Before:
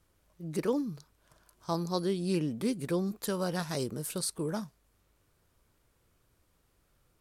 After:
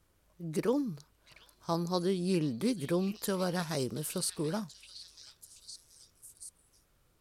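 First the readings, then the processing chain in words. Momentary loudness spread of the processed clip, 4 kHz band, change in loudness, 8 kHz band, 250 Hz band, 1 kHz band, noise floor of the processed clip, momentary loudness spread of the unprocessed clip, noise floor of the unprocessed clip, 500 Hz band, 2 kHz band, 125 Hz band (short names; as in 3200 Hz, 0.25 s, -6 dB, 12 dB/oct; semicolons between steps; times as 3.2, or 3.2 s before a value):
18 LU, +1.0 dB, 0.0 dB, +0.5 dB, 0.0 dB, 0.0 dB, -70 dBFS, 9 LU, -72 dBFS, 0.0 dB, 0.0 dB, 0.0 dB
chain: delay with a stepping band-pass 0.731 s, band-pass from 3200 Hz, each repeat 0.7 oct, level -6 dB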